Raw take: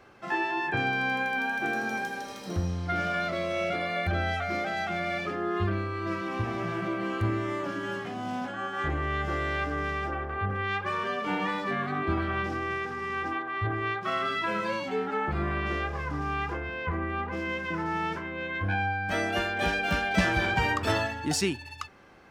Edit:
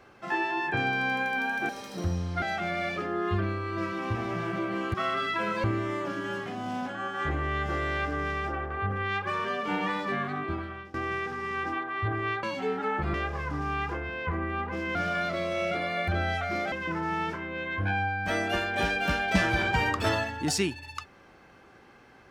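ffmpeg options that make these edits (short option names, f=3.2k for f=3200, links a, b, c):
-filter_complex "[0:a]asplit=10[a][b][c][d][e][f][g][h][i][j];[a]atrim=end=1.692[k];[b]atrim=start=2.208:end=2.942[l];[c]atrim=start=4.708:end=7.232[m];[d]atrim=start=14.018:end=14.722[n];[e]atrim=start=7.228:end=12.53,asetpts=PTS-STARTPTS,afade=t=out:st=4.532:d=0.77:silence=0.0841395[o];[f]atrim=start=12.53:end=14.022,asetpts=PTS-STARTPTS,afade=t=in:d=0.004:c=hsin:silence=0.0841395[p];[g]atrim=start=14.718:end=15.432[q];[h]atrim=start=15.738:end=17.552[r];[i]atrim=start=2.938:end=4.712[s];[j]atrim=start=17.548[t];[k][l]acrossfade=d=0.004:c1=hsin:c2=hsin[u];[u][m]acrossfade=d=0.004:c1=hsin:c2=hsin[v];[v][n]acrossfade=d=0.004:c1=hsin:c2=hsin[w];[o][p]concat=n=2:v=0:a=1[x];[w][x]acrossfade=d=0.004:c1=hsin:c2=hsin[y];[y][q]acrossfade=d=0.004:c1=hsin:c2=hsin[z];[z][r]acrossfade=d=0.004:c1=hsin:c2=hsin[aa];[aa][s]acrossfade=d=0.004:c1=hsin:c2=hsin[ab];[ab][t]acrossfade=d=0.004:c1=hsin:c2=hsin"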